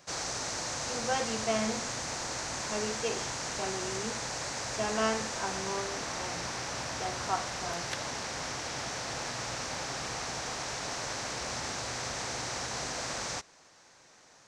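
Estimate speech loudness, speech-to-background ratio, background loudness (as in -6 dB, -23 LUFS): -36.5 LUFS, -1.5 dB, -35.0 LUFS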